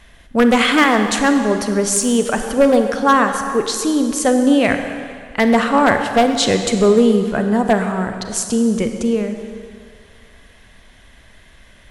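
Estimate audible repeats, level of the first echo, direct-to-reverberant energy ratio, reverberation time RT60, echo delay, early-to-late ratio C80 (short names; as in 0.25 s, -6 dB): none, none, 6.0 dB, 2.1 s, none, 7.5 dB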